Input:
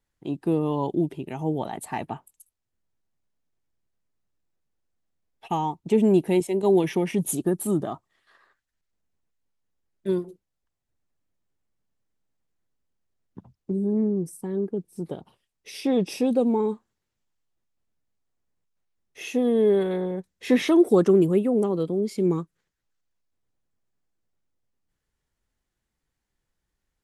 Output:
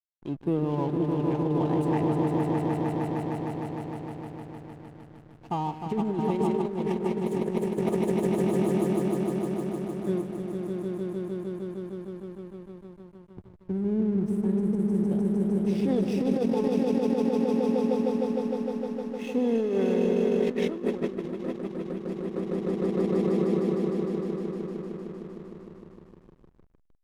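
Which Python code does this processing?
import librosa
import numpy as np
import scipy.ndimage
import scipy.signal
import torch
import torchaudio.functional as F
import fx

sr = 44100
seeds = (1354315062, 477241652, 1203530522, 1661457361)

p1 = fx.peak_eq(x, sr, hz=81.0, db=10.5, octaves=0.97)
p2 = p1 + fx.echo_swell(p1, sr, ms=153, loudest=5, wet_db=-4.5, dry=0)
p3 = fx.over_compress(p2, sr, threshold_db=-19.0, ratio=-0.5)
p4 = fx.high_shelf(p3, sr, hz=6400.0, db=-10.5)
p5 = fx.backlash(p4, sr, play_db=-33.5)
y = p5 * librosa.db_to_amplitude(-5.5)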